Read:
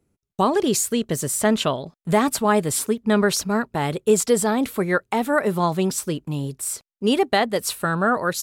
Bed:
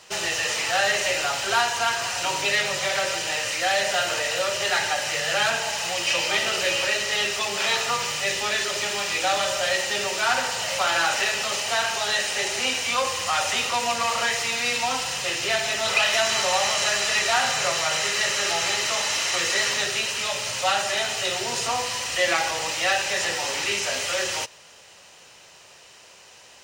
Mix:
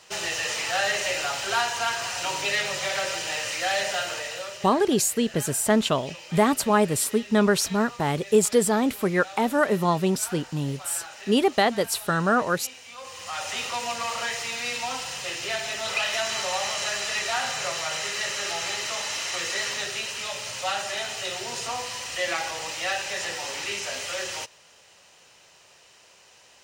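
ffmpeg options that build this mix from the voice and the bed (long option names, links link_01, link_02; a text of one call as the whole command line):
ffmpeg -i stem1.wav -i stem2.wav -filter_complex "[0:a]adelay=4250,volume=-1.5dB[link_01];[1:a]volume=10.5dB,afade=type=out:start_time=3.81:duration=0.93:silence=0.158489,afade=type=in:start_time=12.97:duration=0.67:silence=0.211349[link_02];[link_01][link_02]amix=inputs=2:normalize=0" out.wav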